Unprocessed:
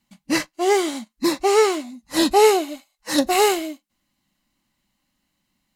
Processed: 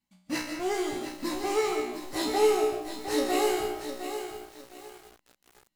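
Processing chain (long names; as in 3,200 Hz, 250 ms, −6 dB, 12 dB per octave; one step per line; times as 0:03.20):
reverb reduction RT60 0.5 s
in parallel at −7 dB: comparator with hysteresis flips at −27.5 dBFS
on the sum: tuned comb filter 61 Hz, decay 0.59 s, harmonics all, mix 90%
comb and all-pass reverb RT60 0.57 s, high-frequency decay 0.5×, pre-delay 110 ms, DRR 5.5 dB
feedback echo at a low word length 708 ms, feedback 35%, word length 7 bits, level −8.5 dB
level −2 dB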